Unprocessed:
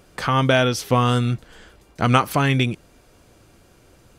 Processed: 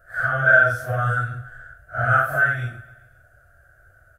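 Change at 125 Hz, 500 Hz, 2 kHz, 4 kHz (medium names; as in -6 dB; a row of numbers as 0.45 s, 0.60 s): -5.0 dB, -4.0 dB, +9.5 dB, under -20 dB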